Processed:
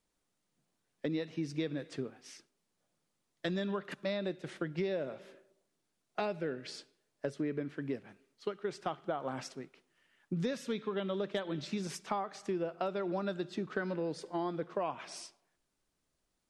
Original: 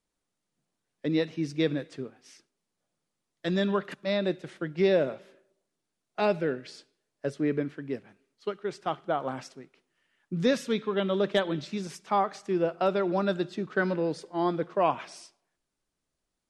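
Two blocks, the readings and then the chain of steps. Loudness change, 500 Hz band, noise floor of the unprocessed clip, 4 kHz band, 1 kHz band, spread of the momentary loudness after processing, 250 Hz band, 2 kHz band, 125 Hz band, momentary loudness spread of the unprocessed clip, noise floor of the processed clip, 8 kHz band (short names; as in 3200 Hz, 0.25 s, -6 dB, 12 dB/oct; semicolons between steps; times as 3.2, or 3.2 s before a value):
-8.5 dB, -8.5 dB, -84 dBFS, -7.5 dB, -9.0 dB, 9 LU, -7.5 dB, -8.5 dB, -6.5 dB, 12 LU, -82 dBFS, -2.0 dB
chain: compressor, threshold -34 dBFS, peak gain reduction 14.5 dB; gain +1.5 dB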